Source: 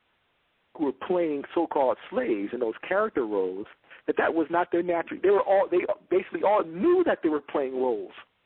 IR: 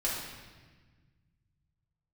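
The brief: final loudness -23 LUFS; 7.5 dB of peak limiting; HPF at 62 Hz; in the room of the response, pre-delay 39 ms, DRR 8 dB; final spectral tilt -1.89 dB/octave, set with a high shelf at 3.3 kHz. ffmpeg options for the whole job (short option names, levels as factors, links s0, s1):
-filter_complex "[0:a]highpass=62,highshelf=f=3300:g=-8,alimiter=limit=0.106:level=0:latency=1,asplit=2[s0][s1];[1:a]atrim=start_sample=2205,adelay=39[s2];[s1][s2]afir=irnorm=-1:irlink=0,volume=0.188[s3];[s0][s3]amix=inputs=2:normalize=0,volume=2"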